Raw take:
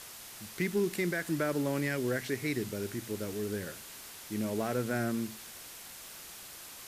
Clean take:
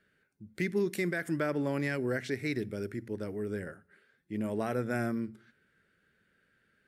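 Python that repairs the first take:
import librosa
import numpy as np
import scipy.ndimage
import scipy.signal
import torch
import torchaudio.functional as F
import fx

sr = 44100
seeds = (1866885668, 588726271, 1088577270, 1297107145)

y = fx.fix_declip(x, sr, threshold_db=-22.0)
y = fx.noise_reduce(y, sr, print_start_s=6.3, print_end_s=6.8, reduce_db=24.0)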